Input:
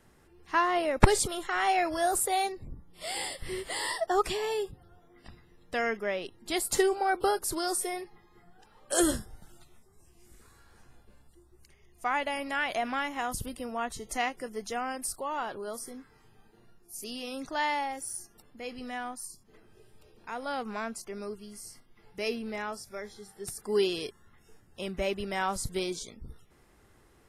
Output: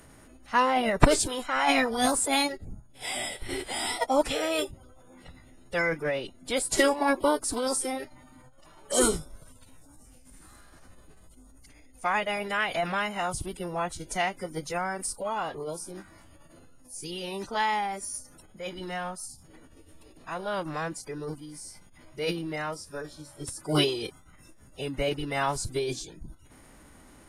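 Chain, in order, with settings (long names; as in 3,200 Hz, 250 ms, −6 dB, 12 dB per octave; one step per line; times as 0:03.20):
steady tone 9,200 Hz −54 dBFS
floating-point word with a short mantissa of 6 bits
phase-vocoder pitch shift with formants kept −5.5 semitones
level +3 dB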